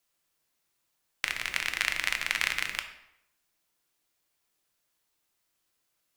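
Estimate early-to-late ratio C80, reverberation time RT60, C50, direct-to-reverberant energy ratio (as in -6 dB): 12.0 dB, 0.80 s, 9.5 dB, 6.0 dB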